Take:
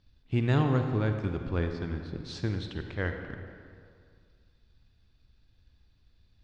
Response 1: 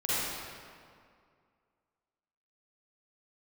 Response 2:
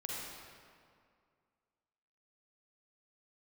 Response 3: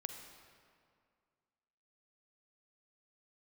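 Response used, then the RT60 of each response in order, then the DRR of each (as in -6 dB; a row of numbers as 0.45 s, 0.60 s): 3; 2.2 s, 2.2 s, 2.2 s; -11.5 dB, -4.5 dB, 5.5 dB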